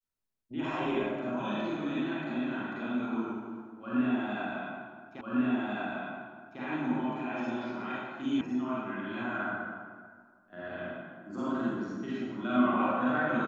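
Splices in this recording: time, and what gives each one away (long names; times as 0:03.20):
0:05.21: the same again, the last 1.4 s
0:08.41: cut off before it has died away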